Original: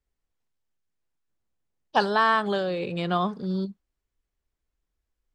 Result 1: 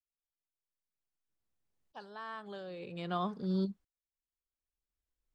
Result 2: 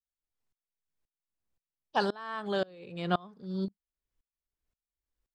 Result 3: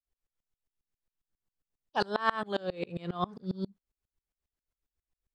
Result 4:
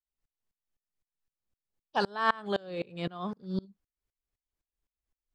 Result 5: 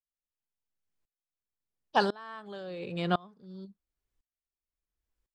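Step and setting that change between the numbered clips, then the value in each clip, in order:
sawtooth tremolo in dB, rate: 0.52 Hz, 1.9 Hz, 7.4 Hz, 3.9 Hz, 0.95 Hz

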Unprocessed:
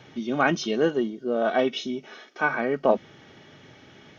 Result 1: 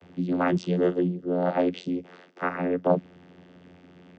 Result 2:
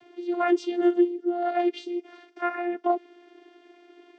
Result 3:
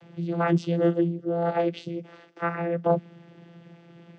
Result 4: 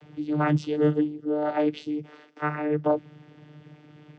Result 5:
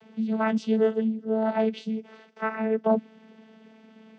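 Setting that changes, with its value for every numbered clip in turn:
vocoder, frequency: 89 Hz, 350 Hz, 170 Hz, 150 Hz, 220 Hz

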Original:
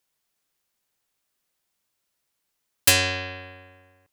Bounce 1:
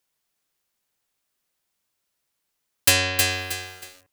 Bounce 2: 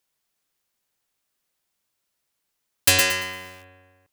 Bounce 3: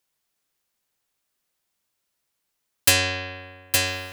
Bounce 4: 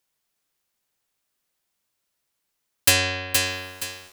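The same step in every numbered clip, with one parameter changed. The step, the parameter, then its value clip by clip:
bit-crushed delay, time: 316 ms, 114 ms, 865 ms, 471 ms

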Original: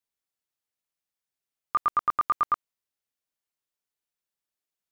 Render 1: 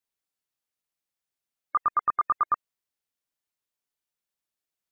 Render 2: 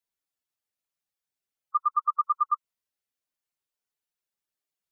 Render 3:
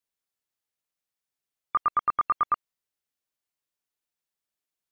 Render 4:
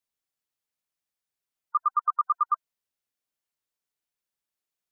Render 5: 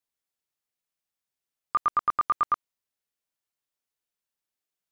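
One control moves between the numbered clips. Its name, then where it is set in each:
spectral gate, under each frame's peak: -35 dB, -10 dB, -45 dB, -20 dB, -60 dB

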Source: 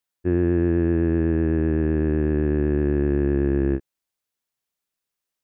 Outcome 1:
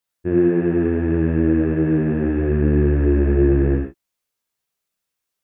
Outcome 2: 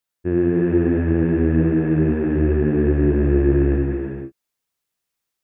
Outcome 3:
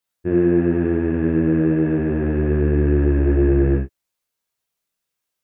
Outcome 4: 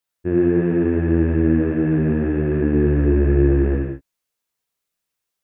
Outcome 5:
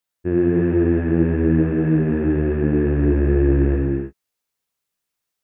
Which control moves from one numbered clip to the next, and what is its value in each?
gated-style reverb, gate: 150 ms, 530 ms, 100 ms, 220 ms, 340 ms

